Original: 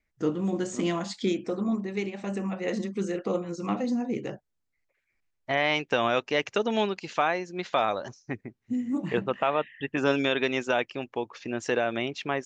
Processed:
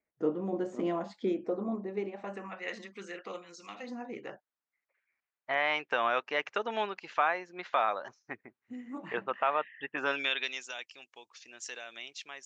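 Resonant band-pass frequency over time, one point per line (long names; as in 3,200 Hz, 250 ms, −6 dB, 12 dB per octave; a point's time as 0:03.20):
resonant band-pass, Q 1
0:02.02 580 Hz
0:02.66 2,100 Hz
0:03.24 2,100 Hz
0:03.73 5,000 Hz
0:03.90 1,300 Hz
0:10.00 1,300 Hz
0:10.66 7,100 Hz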